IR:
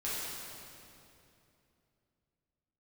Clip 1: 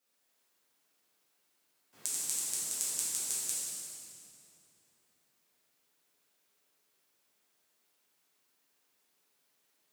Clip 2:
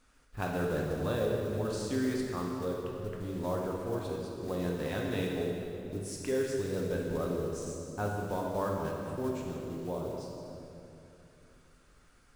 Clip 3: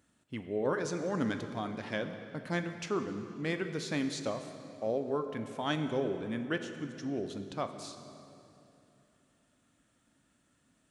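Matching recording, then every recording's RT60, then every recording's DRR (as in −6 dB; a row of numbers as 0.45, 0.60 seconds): 1; 2.8, 2.8, 2.8 seconds; −10.0, −2.0, 7.0 decibels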